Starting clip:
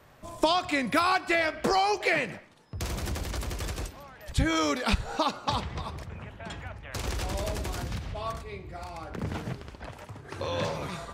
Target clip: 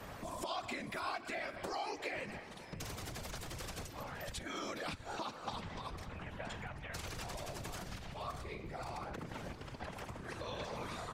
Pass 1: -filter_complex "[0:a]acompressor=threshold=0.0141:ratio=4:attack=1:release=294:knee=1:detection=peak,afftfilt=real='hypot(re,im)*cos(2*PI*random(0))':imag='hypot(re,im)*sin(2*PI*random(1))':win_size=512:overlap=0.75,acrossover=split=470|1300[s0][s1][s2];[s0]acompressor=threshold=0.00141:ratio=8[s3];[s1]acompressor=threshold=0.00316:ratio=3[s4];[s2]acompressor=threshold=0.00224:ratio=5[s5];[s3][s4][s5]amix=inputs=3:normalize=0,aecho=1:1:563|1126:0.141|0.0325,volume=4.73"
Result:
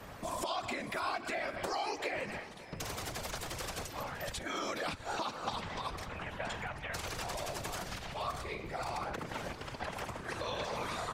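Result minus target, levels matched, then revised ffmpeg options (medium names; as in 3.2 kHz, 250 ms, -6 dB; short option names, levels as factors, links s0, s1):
compression: peak gain reduction -7.5 dB
-filter_complex "[0:a]acompressor=threshold=0.00447:ratio=4:attack=1:release=294:knee=1:detection=peak,afftfilt=real='hypot(re,im)*cos(2*PI*random(0))':imag='hypot(re,im)*sin(2*PI*random(1))':win_size=512:overlap=0.75,acrossover=split=470|1300[s0][s1][s2];[s0]acompressor=threshold=0.00141:ratio=8[s3];[s1]acompressor=threshold=0.00316:ratio=3[s4];[s2]acompressor=threshold=0.00224:ratio=5[s5];[s3][s4][s5]amix=inputs=3:normalize=0,aecho=1:1:563|1126:0.141|0.0325,volume=4.73"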